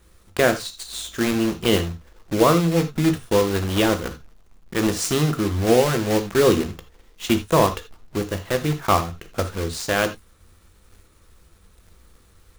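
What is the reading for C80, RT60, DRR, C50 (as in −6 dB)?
18.5 dB, non-exponential decay, 8.0 dB, 13.0 dB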